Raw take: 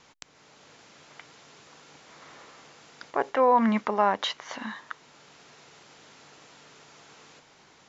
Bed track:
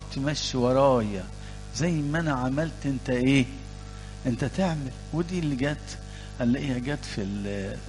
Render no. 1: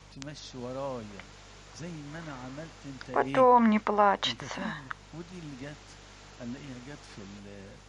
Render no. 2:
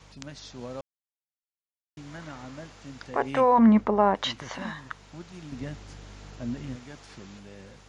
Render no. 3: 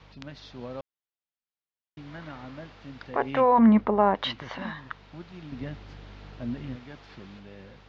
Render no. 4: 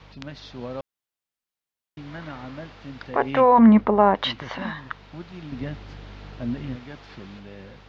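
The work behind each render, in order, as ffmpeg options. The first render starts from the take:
ffmpeg -i in.wav -i bed.wav -filter_complex "[1:a]volume=-15.5dB[link_01];[0:a][link_01]amix=inputs=2:normalize=0" out.wav
ffmpeg -i in.wav -filter_complex "[0:a]asettb=1/sr,asplit=3[link_01][link_02][link_03];[link_01]atrim=end=3.584[link_04];[link_02]atrim=start=3.58:end=4.15,asetpts=PTS-STARTPTS,afade=type=in:duration=0.004:curve=qsin,afade=type=out:start_time=0.566:duration=0.004:curve=qsin,tiltshelf=frequency=920:gain=8[link_05];[link_03]atrim=start=4.146[link_06];[link_04][link_05]acrossfade=duration=0.004:curve1=hsin:curve2=qsin[link_07];[link_07][link_06]acrossfade=duration=0.004:curve1=qsin:curve2=hsin,asettb=1/sr,asplit=3[link_08][link_09][link_10];[link_08]atrim=end=5.524[link_11];[link_09]atrim=start=5.52:end=6.76,asetpts=PTS-STARTPTS,afade=type=in:duration=0.004:curve=qsin,afade=type=out:start_time=1.236:duration=0.004:curve=qsin,lowshelf=frequency=340:gain=10[link_12];[link_10]atrim=start=6.756[link_13];[link_11][link_12]acrossfade=duration=0.004:curve1=hsin:curve2=qsin[link_14];[link_14][link_13]acrossfade=duration=0.004:curve1=qsin:curve2=hsin,asplit=3[link_15][link_16][link_17];[link_15]atrim=end=0.81,asetpts=PTS-STARTPTS,afade=type=out:start_time=0.806:duration=0.004:curve=hsin[link_18];[link_16]atrim=start=0.81:end=1.97,asetpts=PTS-STARTPTS,volume=0[link_19];[link_17]atrim=start=1.97,asetpts=PTS-STARTPTS,afade=type=in:duration=0.004:curve=hsin[link_20];[link_18][link_19][link_20]concat=n=3:v=0:a=1" out.wav
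ffmpeg -i in.wav -af "lowpass=frequency=4300:width=0.5412,lowpass=frequency=4300:width=1.3066" out.wav
ffmpeg -i in.wav -af "volume=4.5dB" out.wav

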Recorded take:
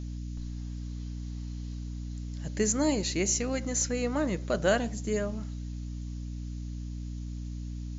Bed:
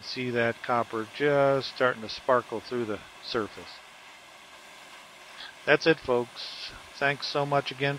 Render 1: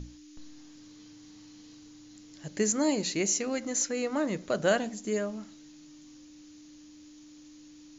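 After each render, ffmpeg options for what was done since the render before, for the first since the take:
ffmpeg -i in.wav -af "bandreject=frequency=60:width_type=h:width=6,bandreject=frequency=120:width_type=h:width=6,bandreject=frequency=180:width_type=h:width=6,bandreject=frequency=240:width_type=h:width=6" out.wav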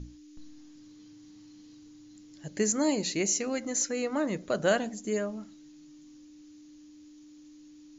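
ffmpeg -i in.wav -af "afftdn=noise_reduction=6:noise_floor=-52" out.wav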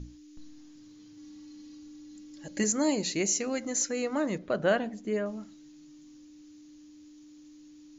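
ffmpeg -i in.wav -filter_complex "[0:a]asettb=1/sr,asplit=3[link_01][link_02][link_03];[link_01]atrim=end=1.174[link_04];[link_02]atrim=start=1.17:end=2.64,asetpts=PTS-STARTPTS,afade=type=in:duration=0.004:curve=qsin,afade=type=out:start_time=1.466:duration=0.004:curve=qsin,aecho=1:1:3.6:0.66,atrim=end_sample=64827[link_05];[link_03]atrim=start=2.636[link_06];[link_04][link_05]acrossfade=duration=0.004:curve1=hsin:curve2=qsin[link_07];[link_07][link_06]acrossfade=duration=0.004:curve1=qsin:curve2=hsin,asettb=1/sr,asplit=3[link_08][link_09][link_10];[link_08]atrim=end=4.384[link_11];[link_09]atrim=start=4.38:end=5.26,asetpts=PTS-STARTPTS,afade=type=in:duration=0.004:curve=qsin,afade=type=out:start_time=0.876:duration=0.004:curve=qsin,lowpass=3100[link_12];[link_10]atrim=start=5.256[link_13];[link_11][link_12]acrossfade=duration=0.004:curve1=hsin:curve2=qsin[link_14];[link_14][link_13]acrossfade=duration=0.004:curve1=qsin:curve2=hsin" out.wav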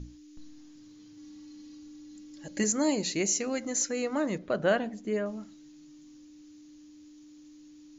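ffmpeg -i in.wav -af anull out.wav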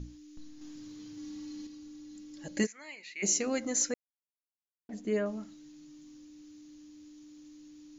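ffmpeg -i in.wav -filter_complex "[0:a]asettb=1/sr,asplit=3[link_01][link_02][link_03];[link_01]atrim=end=0.614[link_04];[link_02]atrim=start=0.61:end=1.67,asetpts=PTS-STARTPTS,afade=type=in:duration=0.004:curve=qsin,afade=type=out:start_time=1.056:duration=0.004:curve=qsin,acontrast=35[link_05];[link_03]atrim=start=1.666[link_06];[link_04][link_05]acrossfade=duration=0.004:curve1=hsin:curve2=qsin[link_07];[link_07][link_06]acrossfade=duration=0.004:curve1=qsin:curve2=hsin,asplit=3[link_08][link_09][link_10];[link_08]afade=type=out:start_time=2.65:duration=0.02[link_11];[link_09]bandpass=frequency=2200:width_type=q:width=4.5,afade=type=in:start_time=2.65:duration=0.02,afade=type=out:start_time=3.22:duration=0.02[link_12];[link_10]afade=type=in:start_time=3.22:duration=0.02[link_13];[link_11][link_12][link_13]amix=inputs=3:normalize=0,asplit=3[link_14][link_15][link_16];[link_14]atrim=end=3.94,asetpts=PTS-STARTPTS,afade=type=out:start_time=3.936:duration=0.004:curve=hsin[link_17];[link_15]atrim=start=3.94:end=4.89,asetpts=PTS-STARTPTS,volume=0[link_18];[link_16]atrim=start=4.89,asetpts=PTS-STARTPTS,afade=type=in:duration=0.004:curve=hsin[link_19];[link_17][link_18][link_19]concat=n=3:v=0:a=1" out.wav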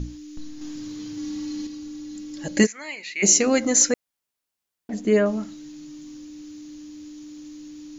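ffmpeg -i in.wav -af "volume=12dB" out.wav

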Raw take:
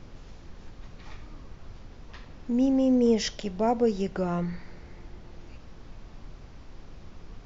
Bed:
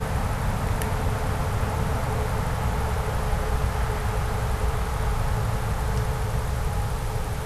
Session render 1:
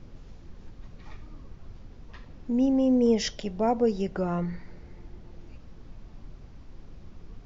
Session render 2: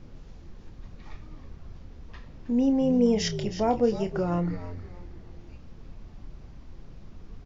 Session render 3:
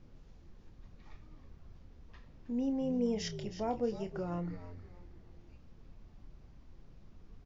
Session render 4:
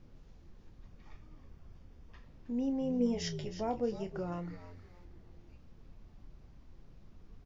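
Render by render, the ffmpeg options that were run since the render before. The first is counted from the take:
ffmpeg -i in.wav -af "afftdn=noise_reduction=6:noise_floor=-48" out.wav
ffmpeg -i in.wav -filter_complex "[0:a]asplit=2[link_01][link_02];[link_02]adelay=29,volume=-10dB[link_03];[link_01][link_03]amix=inputs=2:normalize=0,asplit=4[link_04][link_05][link_06][link_07];[link_05]adelay=317,afreqshift=-81,volume=-12dB[link_08];[link_06]adelay=634,afreqshift=-162,volume=-21.9dB[link_09];[link_07]adelay=951,afreqshift=-243,volume=-31.8dB[link_10];[link_04][link_08][link_09][link_10]amix=inputs=4:normalize=0" out.wav
ffmpeg -i in.wav -af "volume=-10.5dB" out.wav
ffmpeg -i in.wav -filter_complex "[0:a]asettb=1/sr,asplit=3[link_01][link_02][link_03];[link_01]atrim=end=0.864[link_04];[link_02]atrim=start=0.86:end=2.25,asetpts=PTS-STARTPTS,afade=type=in:duration=0.004:curve=qsin,afade=type=out:start_time=1.386:duration=0.004:curve=qsin,bandreject=frequency=4000:width=12[link_05];[link_03]atrim=start=2.246[link_06];[link_04][link_05]acrossfade=duration=0.004:curve1=hsin:curve2=qsin[link_07];[link_07][link_06]acrossfade=duration=0.004:curve1=qsin:curve2=hsin,asettb=1/sr,asplit=3[link_08][link_09][link_10];[link_08]atrim=end=2.994[link_11];[link_09]atrim=start=2.99:end=3.61,asetpts=PTS-STARTPTS,afade=type=in:duration=0.004:curve=qsin,afade=type=out:start_time=0.616:duration=0.004:curve=qsin,asplit=2[link_12][link_13];[link_13]adelay=12,volume=-5dB[link_14];[link_12][link_14]amix=inputs=2:normalize=0,atrim=end_sample=27342[link_15];[link_10]atrim=start=3.606[link_16];[link_11][link_15]acrossfade=duration=0.004:curve1=hsin:curve2=qsin[link_17];[link_17][link_16]acrossfade=duration=0.004:curve1=qsin:curve2=hsin,asettb=1/sr,asplit=3[link_18][link_19][link_20];[link_18]atrim=end=4.324[link_21];[link_19]atrim=start=4.32:end=5.05,asetpts=PTS-STARTPTS,afade=type=in:duration=0.004:curve=qsin,afade=type=out:start_time=0.726:duration=0.004:curve=qsin,tiltshelf=frequency=970:gain=-3.5[link_22];[link_20]atrim=start=5.046[link_23];[link_21][link_22]acrossfade=duration=0.004:curve1=hsin:curve2=qsin[link_24];[link_24][link_23]acrossfade=duration=0.004:curve1=qsin:curve2=hsin" out.wav

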